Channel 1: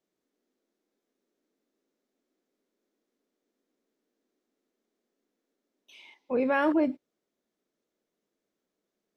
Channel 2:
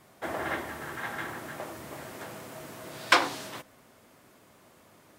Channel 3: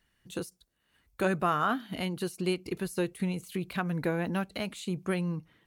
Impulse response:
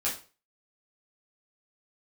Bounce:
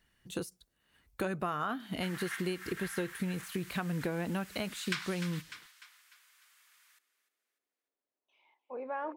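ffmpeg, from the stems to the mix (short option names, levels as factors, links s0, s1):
-filter_complex "[0:a]bandpass=f=870:t=q:w=1.6:csg=0,adelay=2400,volume=0.473,asplit=2[s0][s1];[s1]volume=0.15[s2];[1:a]highpass=f=1500:w=0.5412,highpass=f=1500:w=1.3066,asoftclip=type=tanh:threshold=0.299,adelay=1800,volume=0.841,asplit=2[s3][s4];[s4]volume=0.178[s5];[2:a]volume=1.06[s6];[s2][s5]amix=inputs=2:normalize=0,aecho=0:1:299|598|897|1196|1495|1794:1|0.42|0.176|0.0741|0.0311|0.0131[s7];[s0][s3][s6][s7]amix=inputs=4:normalize=0,acompressor=threshold=0.0282:ratio=6"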